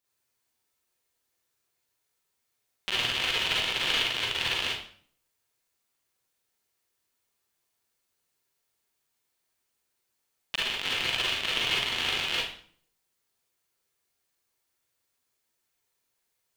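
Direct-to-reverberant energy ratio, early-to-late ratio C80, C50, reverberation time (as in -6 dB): -6.5 dB, 6.0 dB, -0.5 dB, 0.50 s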